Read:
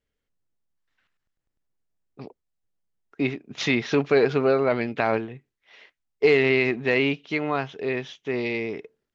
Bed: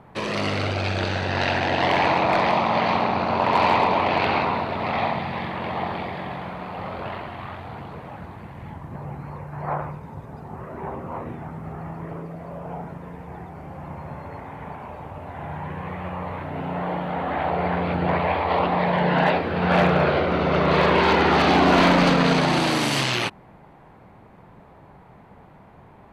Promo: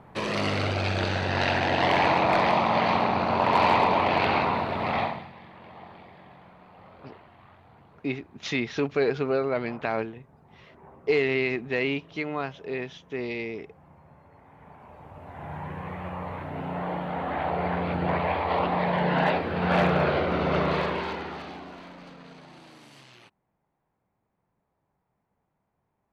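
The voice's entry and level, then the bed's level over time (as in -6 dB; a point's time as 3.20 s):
4.85 s, -5.0 dB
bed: 5.00 s -2 dB
5.34 s -18.5 dB
14.31 s -18.5 dB
15.56 s -4 dB
20.59 s -4 dB
21.82 s -29 dB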